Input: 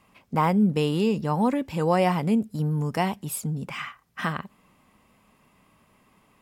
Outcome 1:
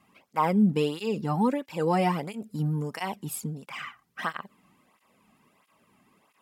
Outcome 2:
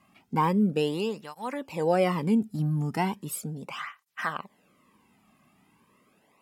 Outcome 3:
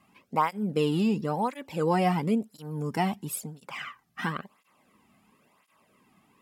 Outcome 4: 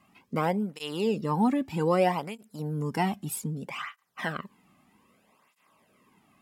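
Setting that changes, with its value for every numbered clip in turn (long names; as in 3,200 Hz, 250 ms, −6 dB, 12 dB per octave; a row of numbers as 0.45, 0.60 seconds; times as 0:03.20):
through-zero flanger with one copy inverted, nulls at: 1.5, 0.37, 0.97, 0.63 Hertz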